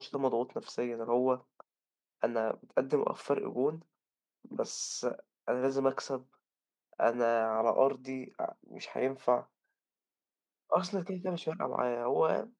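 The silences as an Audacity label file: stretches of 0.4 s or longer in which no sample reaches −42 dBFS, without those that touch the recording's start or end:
1.600000	2.230000	silence
3.770000	4.450000	silence
6.200000	7.000000	silence
9.420000	10.720000	silence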